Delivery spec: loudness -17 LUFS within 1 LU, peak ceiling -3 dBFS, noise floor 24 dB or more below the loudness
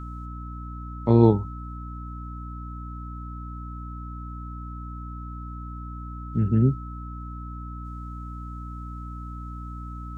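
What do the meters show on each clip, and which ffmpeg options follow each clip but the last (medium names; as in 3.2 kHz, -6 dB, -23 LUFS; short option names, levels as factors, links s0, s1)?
hum 60 Hz; highest harmonic 300 Hz; hum level -34 dBFS; steady tone 1.3 kHz; tone level -41 dBFS; loudness -29.5 LUFS; peak level -5.0 dBFS; loudness target -17.0 LUFS
-> -af "bandreject=f=60:t=h:w=6,bandreject=f=120:t=h:w=6,bandreject=f=180:t=h:w=6,bandreject=f=240:t=h:w=6,bandreject=f=300:t=h:w=6"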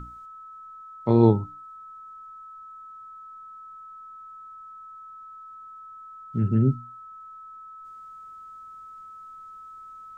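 hum not found; steady tone 1.3 kHz; tone level -41 dBFS
-> -af "bandreject=f=1300:w=30"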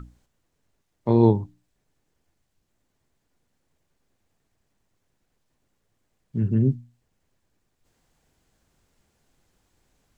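steady tone not found; loudness -23.0 LUFS; peak level -5.5 dBFS; loudness target -17.0 LUFS
-> -af "volume=2,alimiter=limit=0.708:level=0:latency=1"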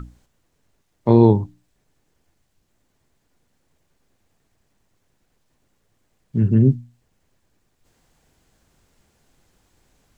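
loudness -17.5 LUFS; peak level -3.0 dBFS; noise floor -69 dBFS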